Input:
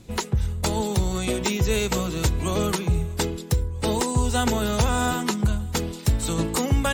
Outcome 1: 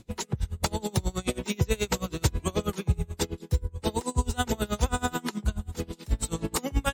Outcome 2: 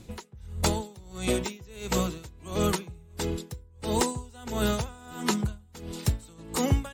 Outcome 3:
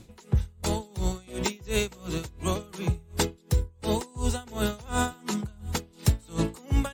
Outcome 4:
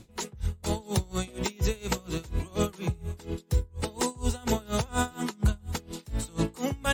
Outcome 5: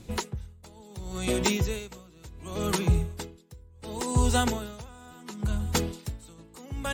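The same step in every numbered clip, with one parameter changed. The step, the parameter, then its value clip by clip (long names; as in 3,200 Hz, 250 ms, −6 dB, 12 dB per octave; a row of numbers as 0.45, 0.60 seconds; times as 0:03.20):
tremolo with a sine in dB, speed: 9.3, 1.5, 2.8, 4.2, 0.7 Hertz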